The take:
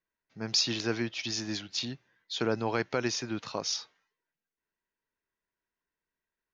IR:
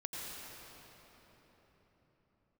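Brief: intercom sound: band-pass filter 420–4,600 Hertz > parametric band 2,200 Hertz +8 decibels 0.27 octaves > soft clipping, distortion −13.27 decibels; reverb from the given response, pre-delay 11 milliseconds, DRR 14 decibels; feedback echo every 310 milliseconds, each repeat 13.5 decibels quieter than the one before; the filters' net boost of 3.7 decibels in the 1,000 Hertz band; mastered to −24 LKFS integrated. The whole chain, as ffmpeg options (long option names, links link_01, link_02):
-filter_complex "[0:a]equalizer=frequency=1000:width_type=o:gain=5,aecho=1:1:310|620:0.211|0.0444,asplit=2[link_01][link_02];[1:a]atrim=start_sample=2205,adelay=11[link_03];[link_02][link_03]afir=irnorm=-1:irlink=0,volume=-15dB[link_04];[link_01][link_04]amix=inputs=2:normalize=0,highpass=420,lowpass=4600,equalizer=frequency=2200:width_type=o:width=0.27:gain=8,asoftclip=threshold=-24dB,volume=10.5dB"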